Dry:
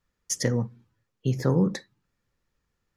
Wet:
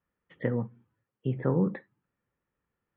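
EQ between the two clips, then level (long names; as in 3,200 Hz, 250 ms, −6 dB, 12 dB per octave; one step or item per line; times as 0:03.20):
high-pass filter 160 Hz 6 dB per octave
elliptic low-pass filter 3,300 Hz
high-frequency loss of the air 470 metres
0.0 dB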